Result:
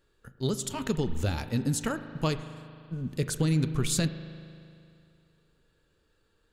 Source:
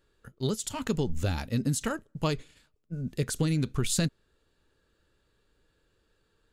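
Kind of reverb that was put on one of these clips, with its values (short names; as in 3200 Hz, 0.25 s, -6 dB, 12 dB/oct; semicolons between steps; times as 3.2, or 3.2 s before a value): spring tank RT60 2.5 s, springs 38 ms, chirp 30 ms, DRR 10.5 dB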